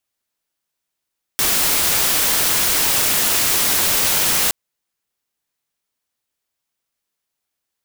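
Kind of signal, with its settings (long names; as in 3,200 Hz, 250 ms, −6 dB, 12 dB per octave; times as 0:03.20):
noise white, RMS −17 dBFS 3.12 s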